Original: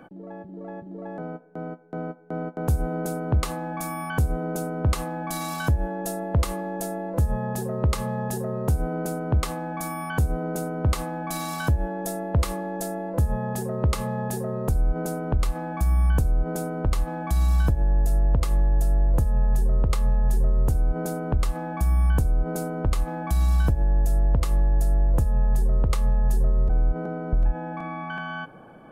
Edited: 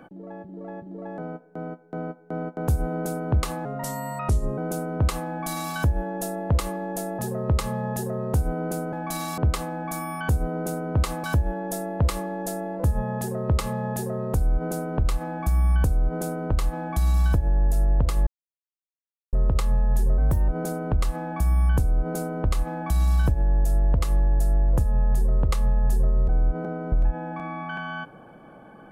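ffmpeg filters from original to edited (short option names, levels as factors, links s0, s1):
-filter_complex "[0:a]asplit=11[s0][s1][s2][s3][s4][s5][s6][s7][s8][s9][s10];[s0]atrim=end=3.654[s11];[s1]atrim=start=3.65:end=4.42,asetpts=PTS-STARTPTS,asetrate=36603,aresample=44100,atrim=end_sample=40912,asetpts=PTS-STARTPTS[s12];[s2]atrim=start=4.416:end=7.032[s13];[s3]atrim=start=7.528:end=9.272[s14];[s4]atrim=start=11.128:end=11.582[s15];[s5]atrim=start=9.268:end=11.132[s16];[s6]atrim=start=11.578:end=18.61,asetpts=PTS-STARTPTS,afade=t=out:st=7.028:d=0.004:c=hsin[s17];[s7]atrim=start=18.61:end=19.67,asetpts=PTS-STARTPTS,volume=0[s18];[s8]atrim=start=19.67:end=20.524,asetpts=PTS-STARTPTS,afade=t=in:d=0.004:c=hsin[s19];[s9]atrim=start=20.52:end=20.89,asetpts=PTS-STARTPTS,asetrate=53361,aresample=44100,atrim=end_sample=13485,asetpts=PTS-STARTPTS[s20];[s10]atrim=start=20.886[s21];[s11][s12]acrossfade=d=0.004:c1=hsin:c2=hsin[s22];[s22][s13]acrossfade=d=0.004:c1=hsin:c2=hsin[s23];[s23][s14]acrossfade=d=0.004:c1=hsin:c2=hsin[s24];[s24][s15]acrossfade=d=0.004:c1=hsin:c2=hsin[s25];[s25][s16]acrossfade=d=0.004:c1=hsin:c2=hsin[s26];[s17][s18][s19]concat=n=3:v=0:a=1[s27];[s26][s27]acrossfade=d=0.004:c1=hsin:c2=hsin[s28];[s28][s20]acrossfade=d=0.004:c1=hsin:c2=hsin[s29];[s29][s21]acrossfade=d=0.004:c1=hsin:c2=hsin"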